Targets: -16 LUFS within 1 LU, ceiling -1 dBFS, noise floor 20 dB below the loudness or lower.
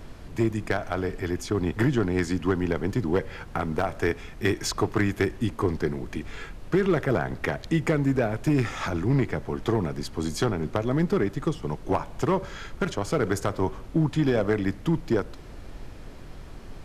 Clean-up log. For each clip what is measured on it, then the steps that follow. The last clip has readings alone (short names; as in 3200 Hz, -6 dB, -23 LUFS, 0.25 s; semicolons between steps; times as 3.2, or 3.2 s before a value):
clipped 0.8%; flat tops at -15.0 dBFS; noise floor -42 dBFS; noise floor target -47 dBFS; loudness -27.0 LUFS; peak -15.0 dBFS; loudness target -16.0 LUFS
-> clip repair -15 dBFS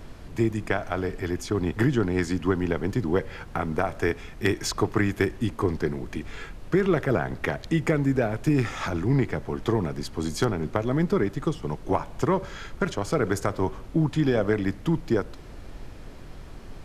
clipped 0.0%; noise floor -42 dBFS; noise floor target -47 dBFS
-> noise print and reduce 6 dB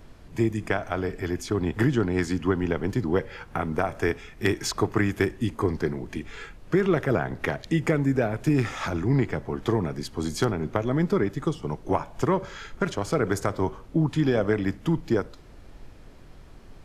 noise floor -47 dBFS; loudness -26.5 LUFS; peak -7.0 dBFS; loudness target -16.0 LUFS
-> gain +10.5 dB; limiter -1 dBFS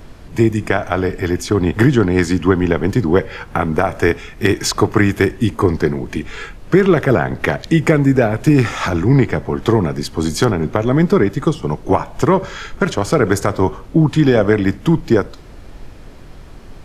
loudness -16.0 LUFS; peak -1.0 dBFS; noise floor -37 dBFS